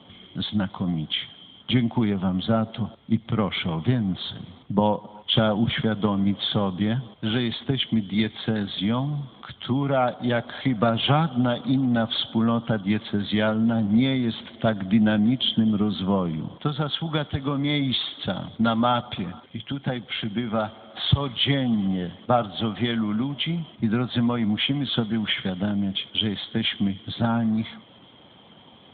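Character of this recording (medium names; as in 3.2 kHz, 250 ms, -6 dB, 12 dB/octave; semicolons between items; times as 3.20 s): a quantiser's noise floor 12-bit, dither none; AMR-NB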